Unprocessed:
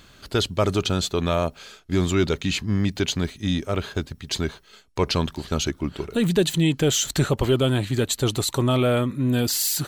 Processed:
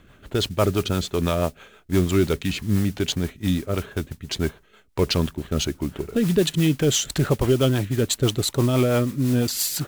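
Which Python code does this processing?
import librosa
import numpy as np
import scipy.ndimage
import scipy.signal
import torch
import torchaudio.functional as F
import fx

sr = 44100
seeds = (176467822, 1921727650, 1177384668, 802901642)

y = fx.wiener(x, sr, points=9)
y = fx.mod_noise(y, sr, seeds[0], snr_db=18)
y = fx.rotary(y, sr, hz=6.0)
y = F.gain(torch.from_numpy(y), 2.5).numpy()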